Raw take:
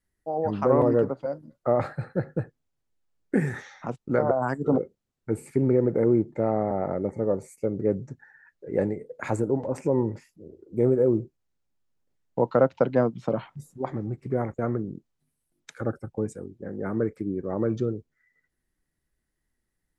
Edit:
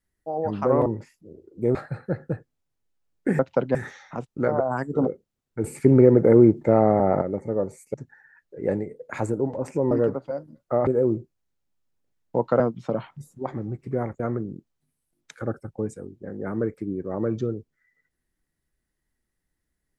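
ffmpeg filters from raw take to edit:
-filter_complex "[0:a]asplit=11[a][b][c][d][e][f][g][h][i][j][k];[a]atrim=end=0.862[l];[b]atrim=start=10.008:end=10.902[m];[c]atrim=start=1.818:end=3.462[n];[d]atrim=start=12.628:end=12.992[o];[e]atrim=start=3.458:end=5.352[p];[f]atrim=start=5.348:end=6.932,asetpts=PTS-STARTPTS,volume=7dB[q];[g]atrim=start=6.928:end=7.652[r];[h]atrim=start=8.038:end=10.012[s];[i]atrim=start=0.858:end=1.822[t];[j]atrim=start=10.898:end=12.632[u];[k]atrim=start=12.988[v];[l][m]acrossfade=d=0.004:c1=hsin:c2=hsin[w];[w][n]acrossfade=d=0.004:c1=hsin:c2=hsin[x];[x][o]acrossfade=d=0.004:c1=hsin:c2=hsin[y];[y][p]acrossfade=d=0.004:c1=hsin:c2=hsin[z];[z][q]acrossfade=d=0.004:c1=hsin:c2=hsin[aa];[aa][r]acrossfade=d=0.004:c1=hsin:c2=hsin[ab];[ab][s]acrossfade=d=0.004:c1=hsin:c2=hsin[ac];[ac][t]acrossfade=d=0.004:c1=hsin:c2=hsin[ad];[ad][u]acrossfade=d=0.004:c1=hsin:c2=hsin[ae];[ae][v]acrossfade=d=0.004:c1=hsin:c2=hsin"

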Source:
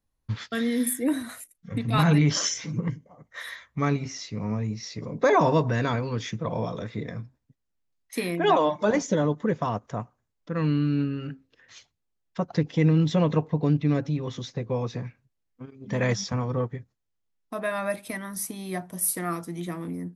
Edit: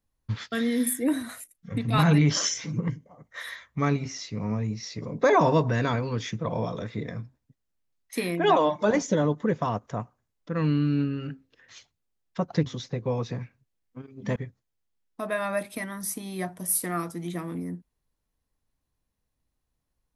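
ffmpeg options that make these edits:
-filter_complex "[0:a]asplit=3[a][b][c];[a]atrim=end=12.662[d];[b]atrim=start=14.298:end=16.002[e];[c]atrim=start=16.688[f];[d][e]acrossfade=d=0.004:c1=hsin:c2=hsin[g];[g][f]acrossfade=d=0.004:c1=hsin:c2=hsin"

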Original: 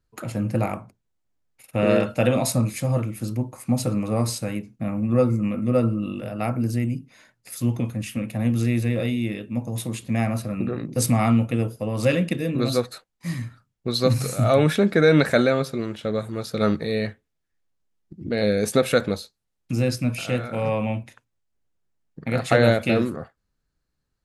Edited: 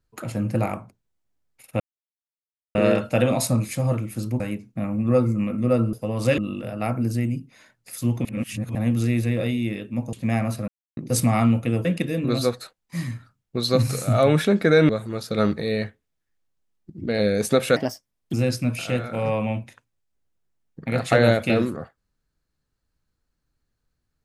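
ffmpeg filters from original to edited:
-filter_complex "[0:a]asplit=14[a][b][c][d][e][f][g][h][i][j][k][l][m][n];[a]atrim=end=1.8,asetpts=PTS-STARTPTS,afade=t=out:st=1.796:d=0.004:c=hsin,apad=pad_dur=0.95[o];[b]atrim=start=1.8:end=3.452,asetpts=PTS-STARTPTS,afade=t=in:d=0.004:c=hsin[p];[c]atrim=start=4.438:end=5.972[q];[d]atrim=start=11.708:end=12.162[r];[e]atrim=start=5.968:end=7.842[s];[f]atrim=start=7.838:end=8.342,asetpts=PTS-STARTPTS,areverse[t];[g]atrim=start=8.338:end=9.722[u];[h]atrim=start=9.988:end=10.54,asetpts=PTS-STARTPTS,afade=t=out:st=0.548:d=0.004:c=hsin[v];[i]atrim=start=10.54:end=10.83,asetpts=PTS-STARTPTS,volume=0[w];[j]atrim=start=10.83:end=11.712,asetpts=PTS-STARTPTS,afade=t=in:d=0.004:c=hsin[x];[k]atrim=start=12.158:end=15.202[y];[l]atrim=start=16.118:end=18.994[z];[m]atrim=start=18.99:end=19.73,asetpts=PTS-STARTPTS,asetrate=56889,aresample=44100[aa];[n]atrim=start=19.726[ab];[o][p]concat=n=2:v=0:a=1[ac];[ac][q]acrossfade=d=0.004:c1=hsin:c2=hsin[ad];[ad][r]acrossfade=d=0.004:c1=hsin:c2=hsin[ae];[ae][s]acrossfade=d=0.004:c1=hsin:c2=hsin[af];[af][t]acrossfade=d=0.004:c1=hsin:c2=hsin[ag];[ag][u]acrossfade=d=0.004:c1=hsin:c2=hsin[ah];[v][w][x]concat=n=3:v=0:a=1[ai];[ah][ai]acrossfade=d=0.004:c1=hsin:c2=hsin[aj];[aj][y]acrossfade=d=0.004:c1=hsin:c2=hsin[ak];[ak][z]acrossfade=d=0.004:c1=hsin:c2=hsin[al];[al][aa]acrossfade=d=0.004:c1=hsin:c2=hsin[am];[am][ab]acrossfade=d=0.004:c1=hsin:c2=hsin"

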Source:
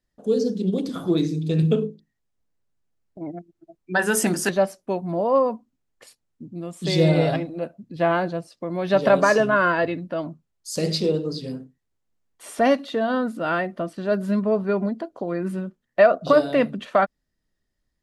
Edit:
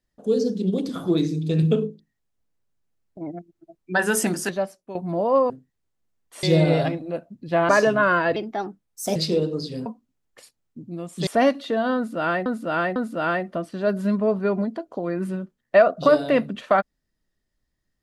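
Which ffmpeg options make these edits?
-filter_complex "[0:a]asplit=11[a][b][c][d][e][f][g][h][i][j][k];[a]atrim=end=4.95,asetpts=PTS-STARTPTS,afade=t=out:st=4.07:d=0.88:silence=0.251189[l];[b]atrim=start=4.95:end=5.502,asetpts=PTS-STARTPTS,afade=t=in:d=0.004:c=hsin:silence=0.251189[m];[c]atrim=start=11.578:end=12.512[n];[d]atrim=start=6.908:end=8.172[o];[e]atrim=start=9.218:end=9.894[p];[f]atrim=start=9.89:end=10.88,asetpts=PTS-STARTPTS,asetrate=54684,aresample=44100[q];[g]atrim=start=10.876:end=11.582[r];[h]atrim=start=5.498:end=6.912[s];[i]atrim=start=12.508:end=13.702[t];[j]atrim=start=13.198:end=13.702[u];[k]atrim=start=13.198[v];[l][m]concat=n=2:v=0:a=1[w];[w][n]acrossfade=d=0.004:c1=hsin:c2=hsin[x];[x][o]acrossfade=d=0.004:c1=hsin:c2=hsin[y];[y][p]acrossfade=d=0.004:c1=hsin:c2=hsin[z];[z][q]acrossfade=d=0.004:c1=hsin:c2=hsin[aa];[aa][r]acrossfade=d=0.004:c1=hsin:c2=hsin[ab];[ab][s]acrossfade=d=0.004:c1=hsin:c2=hsin[ac];[ac][t]acrossfade=d=0.004:c1=hsin:c2=hsin[ad];[ad][u]acrossfade=d=0.004:c1=hsin:c2=hsin[ae];[ae][v]acrossfade=d=0.004:c1=hsin:c2=hsin"

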